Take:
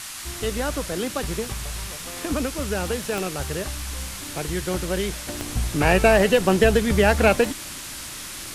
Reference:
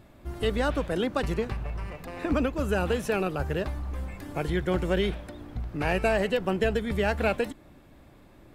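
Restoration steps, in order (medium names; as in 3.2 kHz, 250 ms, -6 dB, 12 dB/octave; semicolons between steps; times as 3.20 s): de-click; noise print and reduce 17 dB; gain correction -8.5 dB, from 5.27 s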